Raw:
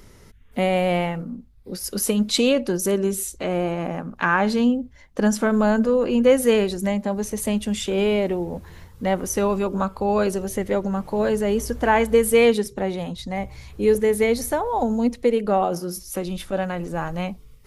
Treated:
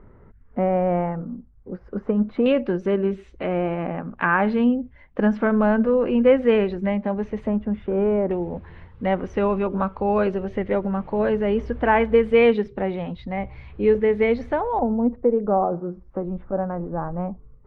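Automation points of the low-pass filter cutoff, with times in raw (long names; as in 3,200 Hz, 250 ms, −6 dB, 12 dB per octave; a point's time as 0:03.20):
low-pass filter 24 dB per octave
1,500 Hz
from 0:02.46 2,600 Hz
from 0:07.47 1,500 Hz
from 0:08.31 2,800 Hz
from 0:14.79 1,200 Hz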